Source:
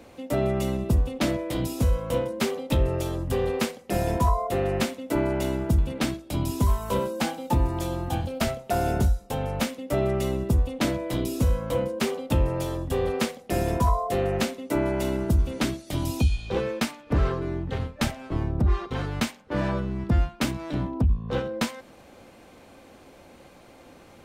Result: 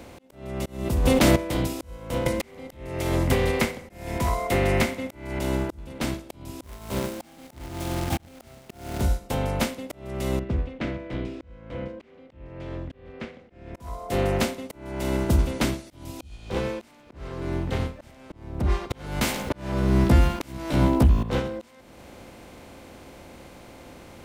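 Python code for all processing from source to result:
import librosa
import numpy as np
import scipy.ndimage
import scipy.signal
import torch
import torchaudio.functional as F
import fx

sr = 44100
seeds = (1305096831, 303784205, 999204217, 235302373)

y = fx.chain(x, sr, fx.high_shelf(hz=8100.0, db=7.0),
    fx.env_flatten(amount_pct=100), at=(0.66, 1.36))
y = fx.chain(y, sr, fx.peak_eq(hz=2100.0, db=13.5, octaves=0.29),
    fx.band_squash(depth_pct=100), at=(2.26, 5.39))
y = fx.chain(y, sr, fx.notch_comb(f0_hz=500.0),
    fx.quant_companded(bits=4), at=(6.63, 9.01))
y = fx.chain(y, sr, fx.ladder_lowpass(hz=2800.0, resonance_pct=25),
    fx.peak_eq(hz=920.0, db=-10.5, octaves=0.79), at=(10.39, 13.75))
y = fx.chain(y, sr, fx.high_shelf(hz=9600.0, db=11.5),
    fx.doubler(ms=15.0, db=-4),
    fx.env_flatten(amount_pct=50), at=(18.9, 21.23))
y = fx.bin_compress(y, sr, power=0.6)
y = fx.auto_swell(y, sr, attack_ms=440.0)
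y = fx.upward_expand(y, sr, threshold_db=-34.0, expansion=1.5)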